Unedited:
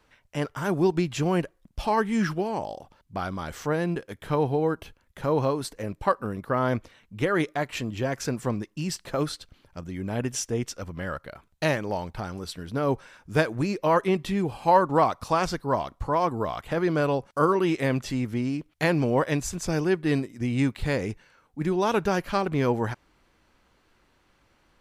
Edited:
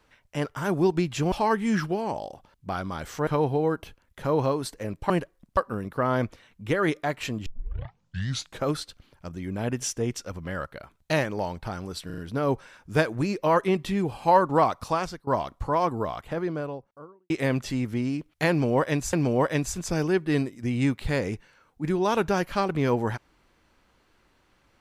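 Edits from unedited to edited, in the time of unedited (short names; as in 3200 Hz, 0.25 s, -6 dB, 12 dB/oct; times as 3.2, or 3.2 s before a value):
1.32–1.79 move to 6.09
3.74–4.26 cut
7.98 tape start 1.19 s
12.58 stutter 0.04 s, 4 plays
15.24–15.67 fade out, to -19.5 dB
16.21–17.7 studio fade out
18.9–19.53 loop, 2 plays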